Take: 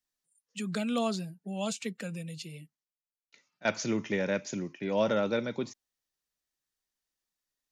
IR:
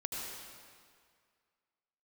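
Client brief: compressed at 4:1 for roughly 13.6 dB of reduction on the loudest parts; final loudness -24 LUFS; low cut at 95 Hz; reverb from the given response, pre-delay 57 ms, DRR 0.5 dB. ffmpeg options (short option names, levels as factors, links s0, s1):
-filter_complex "[0:a]highpass=95,acompressor=threshold=0.0112:ratio=4,asplit=2[s0][s1];[1:a]atrim=start_sample=2205,adelay=57[s2];[s1][s2]afir=irnorm=-1:irlink=0,volume=0.75[s3];[s0][s3]amix=inputs=2:normalize=0,volume=6.31"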